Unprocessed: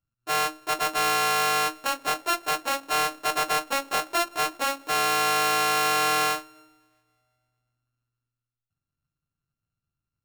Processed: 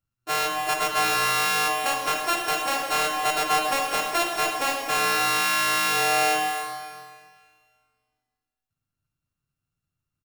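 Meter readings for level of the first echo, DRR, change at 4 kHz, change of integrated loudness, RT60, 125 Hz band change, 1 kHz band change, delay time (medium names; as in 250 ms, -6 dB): -10.5 dB, 2.0 dB, +2.0 dB, +1.5 dB, 1.9 s, +1.5 dB, +1.0 dB, 274 ms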